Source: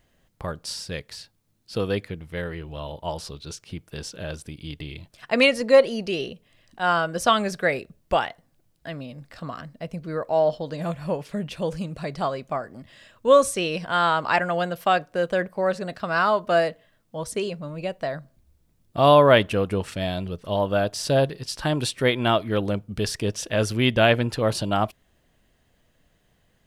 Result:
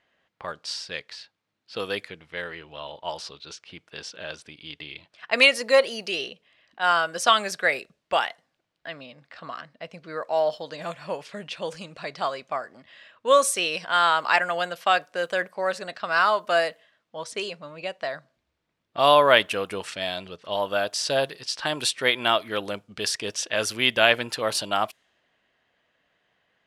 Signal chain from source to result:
low-pass that shuts in the quiet parts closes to 2,700 Hz, open at −20 dBFS
high-pass filter 1,300 Hz 6 dB per octave
level +4.5 dB

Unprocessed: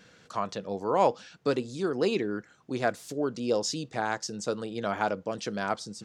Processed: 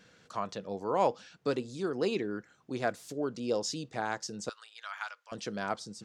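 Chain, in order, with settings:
0:04.49–0:05.32: high-pass filter 1,200 Hz 24 dB per octave
level −4 dB

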